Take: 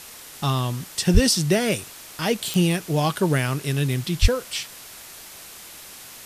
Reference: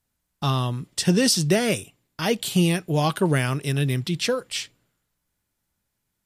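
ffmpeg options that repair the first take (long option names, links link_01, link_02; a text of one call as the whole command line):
ffmpeg -i in.wav -filter_complex "[0:a]adeclick=threshold=4,asplit=3[link_01][link_02][link_03];[link_01]afade=type=out:start_time=1.13:duration=0.02[link_04];[link_02]highpass=frequency=140:width=0.5412,highpass=frequency=140:width=1.3066,afade=type=in:start_time=1.13:duration=0.02,afade=type=out:start_time=1.25:duration=0.02[link_05];[link_03]afade=type=in:start_time=1.25:duration=0.02[link_06];[link_04][link_05][link_06]amix=inputs=3:normalize=0,asplit=3[link_07][link_08][link_09];[link_07]afade=type=out:start_time=4.21:duration=0.02[link_10];[link_08]highpass=frequency=140:width=0.5412,highpass=frequency=140:width=1.3066,afade=type=in:start_time=4.21:duration=0.02,afade=type=out:start_time=4.33:duration=0.02[link_11];[link_09]afade=type=in:start_time=4.33:duration=0.02[link_12];[link_10][link_11][link_12]amix=inputs=3:normalize=0,afwtdn=0.01" out.wav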